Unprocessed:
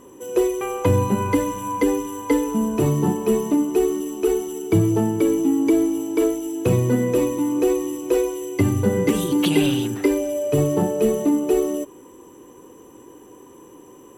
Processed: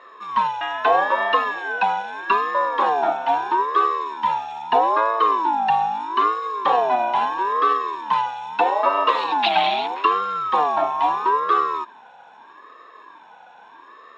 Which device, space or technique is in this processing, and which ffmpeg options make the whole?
voice changer toy: -af "aeval=exprs='val(0)*sin(2*PI*630*n/s+630*0.25/0.78*sin(2*PI*0.78*n/s))':c=same,highpass=590,equalizer=f=690:t=q:w=4:g=6,equalizer=f=1.1k:t=q:w=4:g=4,equalizer=f=1.7k:t=q:w=4:g=5,equalizer=f=2.7k:t=q:w=4:g=7,equalizer=f=3.9k:t=q:w=4:g=9,lowpass=f=4.1k:w=0.5412,lowpass=f=4.1k:w=1.3066,volume=2dB"

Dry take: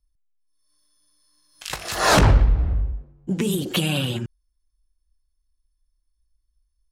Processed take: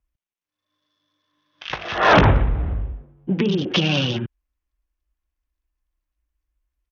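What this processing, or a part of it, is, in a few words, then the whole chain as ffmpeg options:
Bluetooth headset: -af "highpass=f=110:p=1,aresample=8000,aresample=44100,volume=4dB" -ar 48000 -c:a sbc -b:a 64k

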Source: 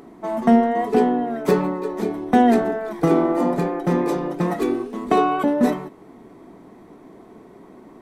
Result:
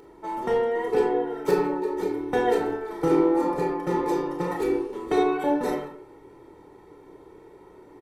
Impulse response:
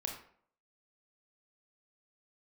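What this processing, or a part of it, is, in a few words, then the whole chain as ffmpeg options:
microphone above a desk: -filter_complex "[0:a]aecho=1:1:2.2:0.87[a];[1:a]atrim=start_sample=2205[b];[a][b]afir=irnorm=-1:irlink=0,volume=-6dB"

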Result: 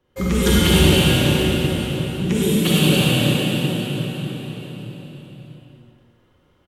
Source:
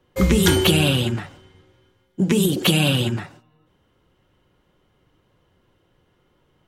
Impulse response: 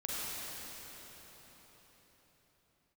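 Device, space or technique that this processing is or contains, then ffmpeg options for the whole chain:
cave: -filter_complex "[0:a]aecho=1:1:259:0.355[a];[1:a]atrim=start_sample=2205[b];[a][b]afir=irnorm=-1:irlink=0,volume=-2dB"

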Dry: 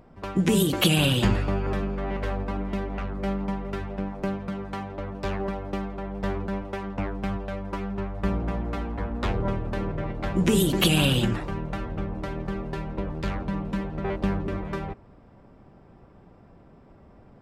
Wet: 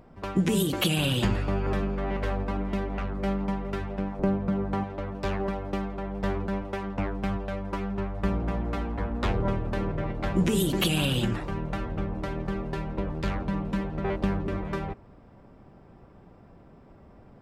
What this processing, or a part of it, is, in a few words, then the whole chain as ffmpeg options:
clipper into limiter: -filter_complex "[0:a]asettb=1/sr,asplit=3[a][b][c];[a]atrim=end=4.194[d];[b]atrim=start=4.19:end=4.84,asetpts=PTS-STARTPTS,afade=t=in:d=0.004:c=qsin,afade=t=out:st=0.646:d=0.004:c=qsin,tiltshelf=f=1.4k:g=6.5[e];[c]atrim=start=4.836[f];[d][e]acrossfade=d=0.004:c1=hsin:c2=qsin[g];[g][f]acrossfade=d=0.004:c1=qsin:c2=hsin,asoftclip=type=hard:threshold=-9dB,alimiter=limit=-14dB:level=0:latency=1:release=426"

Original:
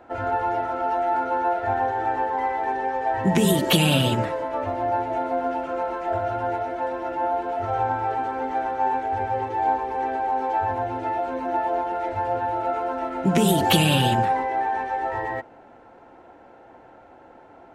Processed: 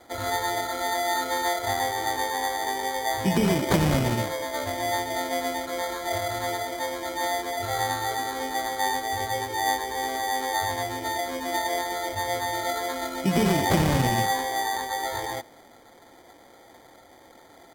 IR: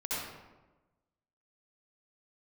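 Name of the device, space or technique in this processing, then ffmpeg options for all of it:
crushed at another speed: -af "asetrate=55125,aresample=44100,acrusher=samples=13:mix=1:aa=0.000001,asetrate=35280,aresample=44100,volume=-3dB"

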